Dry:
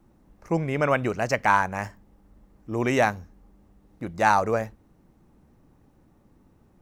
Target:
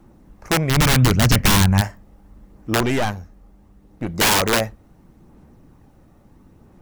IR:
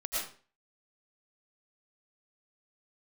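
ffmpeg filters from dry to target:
-filter_complex "[0:a]asplit=3[a][b][c];[a]afade=t=out:st=2.79:d=0.02[d];[b]aeval=exprs='(tanh(17.8*val(0)+0.55)-tanh(0.55))/17.8':c=same,afade=t=in:st=2.79:d=0.02,afade=t=out:st=4.08:d=0.02[e];[c]afade=t=in:st=4.08:d=0.02[f];[d][e][f]amix=inputs=3:normalize=0,aphaser=in_gain=1:out_gain=1:delay=1.6:decay=0.22:speed=0.74:type=sinusoidal,aeval=exprs='(mod(8.41*val(0)+1,2)-1)/8.41':c=same,asplit=3[g][h][i];[g]afade=t=out:st=0.69:d=0.02[j];[h]asubboost=boost=11:cutoff=200,afade=t=in:st=0.69:d=0.02,afade=t=out:st=1.8:d=0.02[k];[i]afade=t=in:st=1.8:d=0.02[l];[j][k][l]amix=inputs=3:normalize=0,volume=7.5dB"

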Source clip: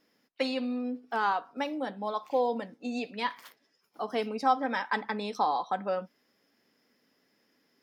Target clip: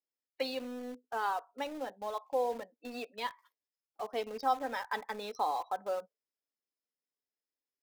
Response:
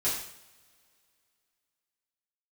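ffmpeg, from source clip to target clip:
-filter_complex "[0:a]highpass=460,afftdn=nr=24:nf=-44,equalizer=f=1.6k:w=0.44:g=-8.5,asplit=2[a][b];[b]acrusher=bits=6:mix=0:aa=0.000001,volume=-9dB[c];[a][c]amix=inputs=2:normalize=0,volume=-1dB"

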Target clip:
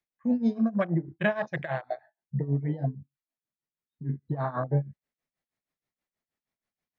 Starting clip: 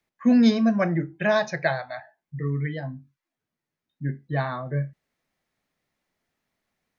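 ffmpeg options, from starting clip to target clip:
-af "afwtdn=0.0355,acompressor=threshold=-27dB:ratio=10,tremolo=f=6.3:d=0.85,volume=7dB"

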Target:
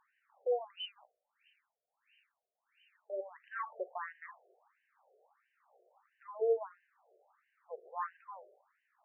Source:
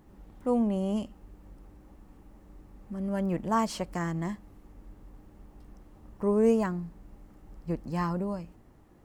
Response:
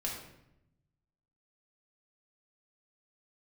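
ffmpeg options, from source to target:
-filter_complex "[0:a]asplit=3[a][b][c];[a]afade=t=out:st=6.26:d=0.02[d];[b]agate=range=-33dB:threshold=-19dB:ratio=3:detection=peak,afade=t=in:st=6.26:d=0.02,afade=t=out:st=6.7:d=0.02[e];[c]afade=t=in:st=6.7:d=0.02[f];[d][e][f]amix=inputs=3:normalize=0,bandreject=f=50:t=h:w=6,bandreject=f=100:t=h:w=6,bandreject=f=150:t=h:w=6,bandreject=f=200:t=h:w=6,bandreject=f=250:t=h:w=6,bandreject=f=300:t=h:w=6,bandreject=f=350:t=h:w=6,bandreject=f=400:t=h:w=6,bandreject=f=450:t=h:w=6,asplit=2[g][h];[1:a]atrim=start_sample=2205,lowshelf=f=92:g=-3.5[i];[h][i]afir=irnorm=-1:irlink=0,volume=-18dB[j];[g][j]amix=inputs=2:normalize=0,asettb=1/sr,asplit=3[k][l][m];[k]atrim=end=0.774[n];[l]atrim=start=0.77:end=3.1,asetpts=PTS-STARTPTS,afade=t=in:d=0.004:c=qsin,afade=t=out:st=2.326:d=0.004:c=qsin,lowpass=f=3.1k:t=q:w=0.5098,lowpass=f=3.1k:t=q:w=0.6013,lowpass=f=3.1k:t=q:w=0.9,lowpass=f=3.1k:t=q:w=2.563,afreqshift=-3600[o];[m]atrim=start=3.096[p];[n][o]acrossfade=d=0.004:c1=hsin:c2=qsin[q];[q][p]acrossfade=d=0.004:c1=qsin:c2=hsin,afftfilt=real='re*between(b*sr/1024,510*pow(2200/510,0.5+0.5*sin(2*PI*1.5*pts/sr))/1.41,510*pow(2200/510,0.5+0.5*sin(2*PI*1.5*pts/sr))*1.41)':imag='im*between(b*sr/1024,510*pow(2200/510,0.5+0.5*sin(2*PI*1.5*pts/sr))/1.41,510*pow(2200/510,0.5+0.5*sin(2*PI*1.5*pts/sr))*1.41)':win_size=1024:overlap=0.75,volume=-3dB"

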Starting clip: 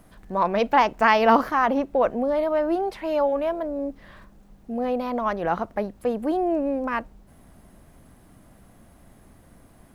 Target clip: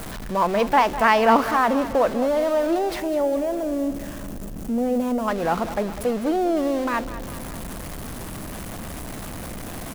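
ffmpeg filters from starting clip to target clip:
-filter_complex "[0:a]aeval=exprs='val(0)+0.5*0.0376*sgn(val(0))':c=same,asettb=1/sr,asplit=3[a][b][c];[a]atrim=end=3.004[d];[b]atrim=start=3:end=5.28,asetpts=PTS-STARTPTS,afade=t=in:d=0.004:c=qsin,afade=t=out:st=2.276:d=0.004:c=qsin,equalizer=f=250:t=o:w=1:g=4,equalizer=f=1k:t=o:w=1:g=-6,equalizer=f=2k:t=o:w=1:g=-7,equalizer=f=4k:t=o:w=1:g=-8[e];[c]atrim=start=5.276[f];[d][e]acrossfade=d=0.004:c1=hsin:c2=qsin[g];[g][f]acrossfade=d=0.004:c1=qsin:c2=hsin,aecho=1:1:201|402|603|804|1005|1206:0.2|0.114|0.0648|0.037|0.0211|0.012"

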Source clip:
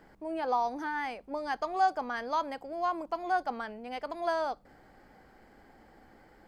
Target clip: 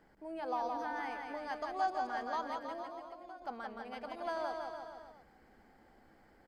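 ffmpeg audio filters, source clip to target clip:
-filter_complex "[0:a]asettb=1/sr,asplit=3[a][b][c];[a]atrim=end=2.824[d];[b]atrim=start=2.82:end=3.42,asetpts=PTS-STARTPTS,afade=t=in:d=0.004:c=qsin,afade=t=out:st=0.596:d=0.004:c=qsin,acompressor=threshold=-42dB:ratio=6[e];[c]atrim=start=3.416[f];[d][e]acrossfade=d=0.004:c1=hsin:c2=qsin[g];[g][f]acrossfade=d=0.004:c1=qsin:c2=hsin,aecho=1:1:170|323|460.7|584.6|696.2:0.631|0.398|0.251|0.158|0.1,volume=-8dB"

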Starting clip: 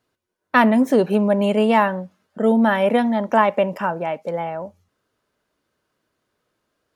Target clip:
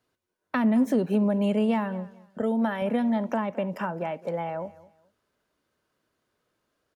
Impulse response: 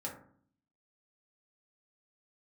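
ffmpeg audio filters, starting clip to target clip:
-filter_complex "[0:a]asettb=1/sr,asplit=3[a][b][c];[a]atrim=end=2.414[d];[b]atrim=start=2.41:end=2.82,asetpts=PTS-STARTPTS,afade=t=in:d=0.004:c=qsin,afade=t=out:st=0.406:d=0.004:c=qsin,lowshelf=f=180:g=-12[e];[c]atrim=start=2.816[f];[d][e]acrossfade=d=0.004:c1=hsin:c2=qsin[g];[g][f]acrossfade=d=0.004:c1=qsin:c2=hsin,acrossover=split=280[h][i];[i]acompressor=threshold=-24dB:ratio=12[j];[h][j]amix=inputs=2:normalize=0,aecho=1:1:214|428:0.1|0.026,volume=-3dB"

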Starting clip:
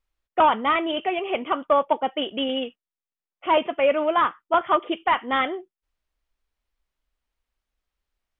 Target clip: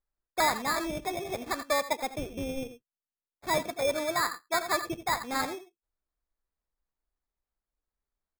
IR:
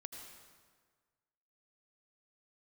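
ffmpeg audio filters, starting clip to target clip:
-filter_complex "[0:a]aresample=8000,aresample=44100[a];[1:a]atrim=start_sample=2205,atrim=end_sample=3969[b];[a][b]afir=irnorm=-1:irlink=0,acrusher=samples=15:mix=1:aa=0.000001,volume=-2.5dB"

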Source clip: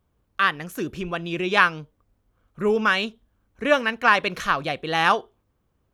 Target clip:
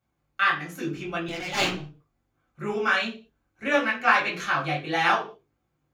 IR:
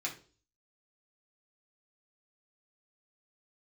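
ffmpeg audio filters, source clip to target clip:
-filter_complex "[0:a]flanger=delay=17.5:depth=4.1:speed=1.6,asettb=1/sr,asplit=3[a][b][c];[a]atrim=end=1.284[d];[b]atrim=start=1.28:end=1.8,asetpts=PTS-STARTPTS,afade=t=in:d=0.004:c=qsin,afade=t=out:st=0.516:d=0.004:c=qsin,aeval=exprs='abs(val(0))':c=same[e];[c]atrim=start=1.796[f];[d][e]acrossfade=d=0.004:c1=hsin:c2=qsin[g];[g][f]acrossfade=d=0.004:c1=qsin:c2=hsin[h];[1:a]atrim=start_sample=2205,afade=t=out:st=0.27:d=0.01,atrim=end_sample=12348[i];[h][i]afir=irnorm=-1:irlink=0,volume=-1dB"

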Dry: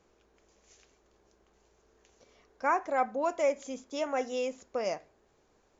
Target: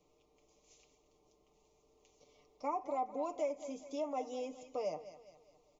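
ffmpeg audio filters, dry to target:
-filter_complex "[0:a]asuperstop=centerf=1600:order=4:qfactor=1.5,aecho=1:1:6.7:0.68,asplit=2[a][b];[b]aecho=0:1:205|410|615|820:0.15|0.0628|0.0264|0.0111[c];[a][c]amix=inputs=2:normalize=0,acrossover=split=540|1300[d][e][f];[d]acompressor=threshold=-35dB:ratio=4[g];[e]acompressor=threshold=-31dB:ratio=4[h];[f]acompressor=threshold=-50dB:ratio=4[i];[g][h][i]amix=inputs=3:normalize=0,volume=-5.5dB"

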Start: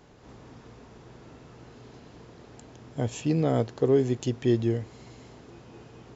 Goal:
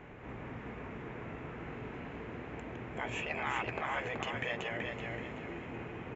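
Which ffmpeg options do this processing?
-af "highshelf=f=3.3k:t=q:w=3:g=-13,afftfilt=real='re*lt(hypot(re,im),0.0891)':imag='im*lt(hypot(re,im),0.0891)':win_size=1024:overlap=0.75,aecho=1:1:379|758|1137|1516|1895:0.631|0.233|0.0864|0.032|0.0118,volume=3.5dB"

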